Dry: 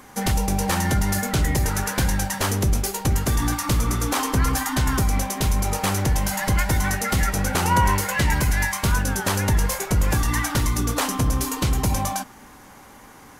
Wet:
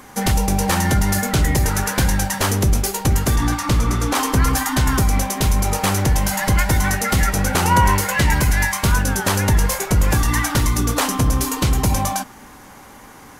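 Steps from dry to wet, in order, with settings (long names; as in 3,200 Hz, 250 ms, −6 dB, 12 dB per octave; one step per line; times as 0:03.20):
0:03.36–0:04.15: high-shelf EQ 9,100 Hz −10.5 dB
level +4 dB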